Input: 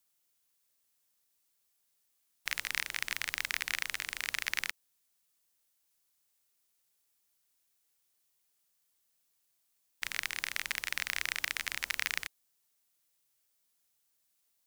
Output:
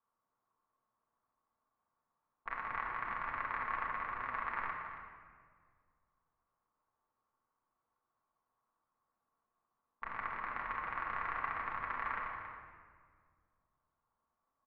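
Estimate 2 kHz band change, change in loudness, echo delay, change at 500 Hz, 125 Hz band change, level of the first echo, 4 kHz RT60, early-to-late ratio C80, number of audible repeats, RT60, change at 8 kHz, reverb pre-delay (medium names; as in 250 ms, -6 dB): -6.0 dB, -5.0 dB, 276 ms, +5.5 dB, +3.5 dB, -10.0 dB, 1.2 s, 3.5 dB, 1, 1.8 s, under -35 dB, 4 ms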